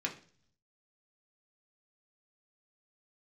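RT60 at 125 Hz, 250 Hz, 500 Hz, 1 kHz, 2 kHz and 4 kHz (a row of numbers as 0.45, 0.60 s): 1.0, 0.70, 0.50, 0.40, 0.45, 0.55 s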